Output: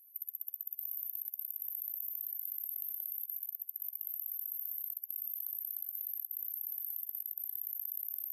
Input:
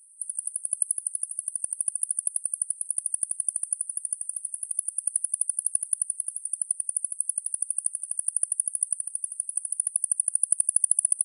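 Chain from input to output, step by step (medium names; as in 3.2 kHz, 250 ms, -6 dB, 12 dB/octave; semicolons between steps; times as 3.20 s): echo that smears into a reverb 455 ms, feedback 44%, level -11 dB; speed mistake 33 rpm record played at 45 rpm; level held to a coarse grid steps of 20 dB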